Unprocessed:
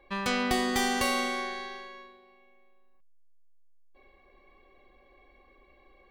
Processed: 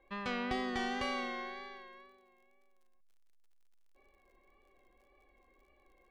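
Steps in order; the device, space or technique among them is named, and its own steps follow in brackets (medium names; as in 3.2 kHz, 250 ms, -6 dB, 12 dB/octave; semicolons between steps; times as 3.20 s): lo-fi chain (low-pass 3.6 kHz 12 dB/octave; wow and flutter; crackle 60 per s -54 dBFS); trim -8 dB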